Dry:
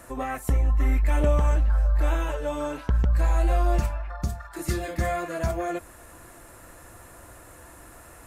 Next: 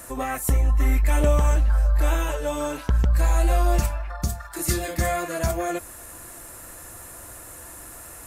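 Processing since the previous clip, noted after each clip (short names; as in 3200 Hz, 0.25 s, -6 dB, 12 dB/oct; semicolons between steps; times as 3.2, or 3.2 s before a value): high shelf 4800 Hz +11.5 dB; gain +2 dB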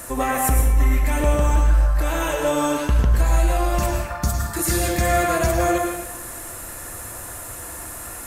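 limiter -16.5 dBFS, peak gain reduction 7.5 dB; on a send at -2 dB: reverb RT60 0.85 s, pre-delay 98 ms; on the sum: gain +5.5 dB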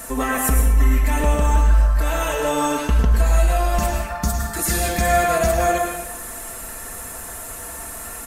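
comb 4.5 ms, depth 57%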